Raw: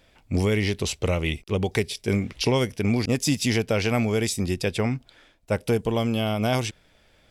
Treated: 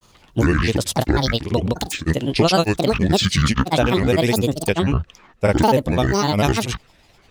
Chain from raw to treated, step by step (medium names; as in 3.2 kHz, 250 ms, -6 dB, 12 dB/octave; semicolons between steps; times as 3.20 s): granulator, pitch spread up and down by 12 st; trim +7 dB